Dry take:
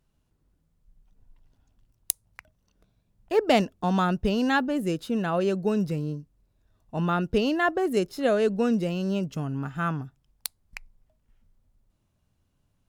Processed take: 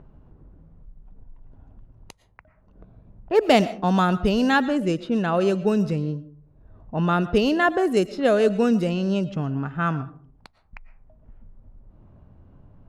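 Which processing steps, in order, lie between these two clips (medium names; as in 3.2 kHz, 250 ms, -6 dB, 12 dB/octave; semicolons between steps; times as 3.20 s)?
algorithmic reverb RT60 0.43 s, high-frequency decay 0.45×, pre-delay 75 ms, DRR 15.5 dB; upward compressor, threshold -37 dBFS; level-controlled noise filter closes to 880 Hz, open at -20 dBFS; trim +4 dB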